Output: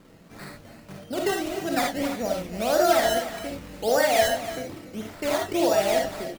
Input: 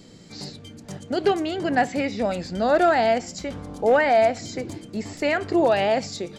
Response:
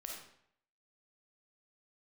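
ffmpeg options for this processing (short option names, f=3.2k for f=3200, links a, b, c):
-filter_complex "[0:a]acrusher=samples=13:mix=1:aa=0.000001:lfo=1:lforange=13:lforate=1.7,aecho=1:1:290:0.211[a];[1:a]atrim=start_sample=2205,atrim=end_sample=3969[b];[a][b]afir=irnorm=-1:irlink=0"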